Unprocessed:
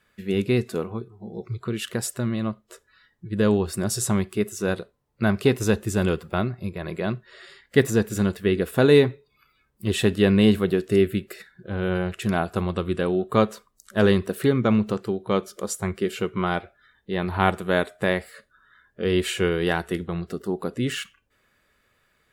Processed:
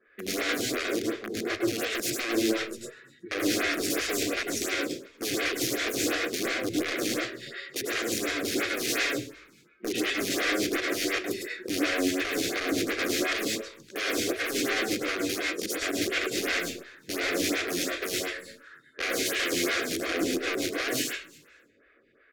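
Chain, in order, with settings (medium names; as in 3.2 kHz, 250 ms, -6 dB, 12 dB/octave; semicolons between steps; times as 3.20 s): compression 2:1, threshold -29 dBFS, peak gain reduction 10 dB; 9.05–11.27 s: band-pass 130–2800 Hz; integer overflow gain 28 dB; level-controlled noise filter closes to 1.6 kHz, open at -40 dBFS; static phaser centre 370 Hz, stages 4; frequency-shifting echo 241 ms, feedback 37%, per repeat -100 Hz, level -23 dB; reverberation RT60 0.40 s, pre-delay 100 ms, DRR -1 dB; lamp-driven phase shifter 2.8 Hz; trim +4.5 dB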